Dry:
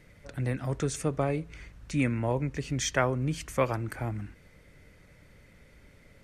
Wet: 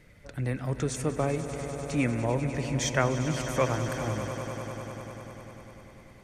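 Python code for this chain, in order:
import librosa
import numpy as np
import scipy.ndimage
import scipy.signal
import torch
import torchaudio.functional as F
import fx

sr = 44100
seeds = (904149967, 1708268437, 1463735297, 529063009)

y = fx.echo_swell(x, sr, ms=99, loudest=5, wet_db=-13.5)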